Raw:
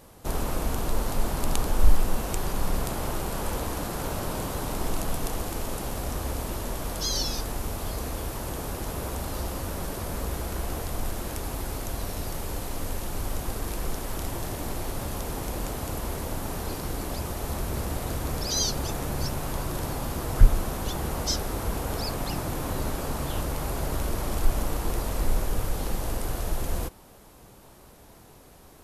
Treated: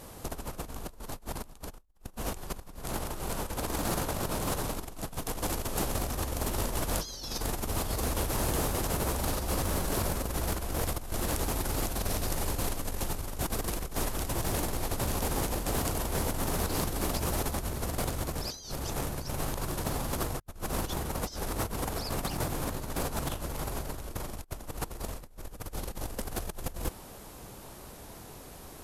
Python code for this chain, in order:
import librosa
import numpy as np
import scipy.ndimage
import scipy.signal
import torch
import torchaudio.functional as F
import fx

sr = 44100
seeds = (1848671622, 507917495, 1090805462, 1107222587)

y = fx.high_shelf(x, sr, hz=4700.0, db=4.0)
y = fx.over_compress(y, sr, threshold_db=-32.0, ratio=-0.5)
y = fx.doppler_dist(y, sr, depth_ms=0.36)
y = F.gain(torch.from_numpy(y), -1.0).numpy()